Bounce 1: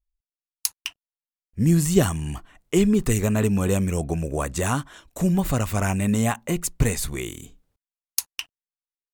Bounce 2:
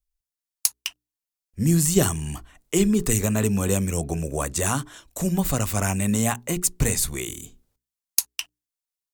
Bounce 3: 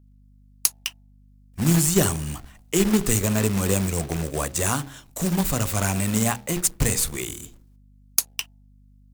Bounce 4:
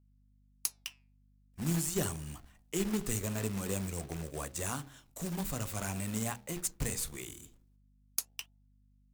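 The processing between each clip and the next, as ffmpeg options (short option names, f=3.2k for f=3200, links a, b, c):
-filter_complex "[0:a]bandreject=f=60:t=h:w=6,bandreject=f=120:t=h:w=6,bandreject=f=180:t=h:w=6,bandreject=f=240:t=h:w=6,bandreject=f=300:t=h:w=6,bandreject=f=360:t=h:w=6,bandreject=f=420:t=h:w=6,acrossover=split=210|4300[a][b][c];[c]acontrast=84[d];[a][b][d]amix=inputs=3:normalize=0,volume=-1dB"
-af "bandreject=f=67.91:t=h:w=4,bandreject=f=135.82:t=h:w=4,bandreject=f=203.73:t=h:w=4,bandreject=f=271.64:t=h:w=4,bandreject=f=339.55:t=h:w=4,bandreject=f=407.46:t=h:w=4,bandreject=f=475.37:t=h:w=4,bandreject=f=543.28:t=h:w=4,bandreject=f=611.19:t=h:w=4,bandreject=f=679.1:t=h:w=4,bandreject=f=747.01:t=h:w=4,bandreject=f=814.92:t=h:w=4,bandreject=f=882.83:t=h:w=4,acrusher=bits=2:mode=log:mix=0:aa=0.000001,aeval=exprs='val(0)+0.00251*(sin(2*PI*50*n/s)+sin(2*PI*2*50*n/s)/2+sin(2*PI*3*50*n/s)/3+sin(2*PI*4*50*n/s)/4+sin(2*PI*5*50*n/s)/5)':c=same"
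-af "flanger=delay=1.6:depth=6.5:regen=-86:speed=0.47:shape=triangular,volume=-8.5dB"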